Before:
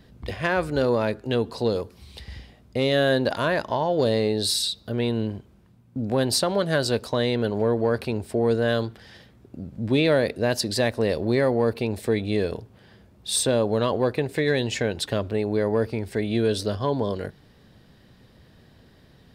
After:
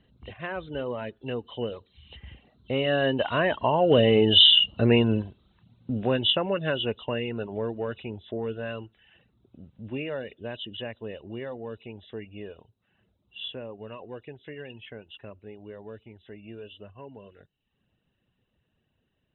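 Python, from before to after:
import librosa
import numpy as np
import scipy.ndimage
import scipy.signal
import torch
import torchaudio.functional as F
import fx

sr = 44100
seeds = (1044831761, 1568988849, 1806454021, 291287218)

y = fx.freq_compress(x, sr, knee_hz=2600.0, ratio=4.0)
y = fx.doppler_pass(y, sr, speed_mps=7, closest_m=4.0, pass_at_s=4.62)
y = fx.dereverb_blind(y, sr, rt60_s=0.6)
y = y * librosa.db_to_amplitude(7.5)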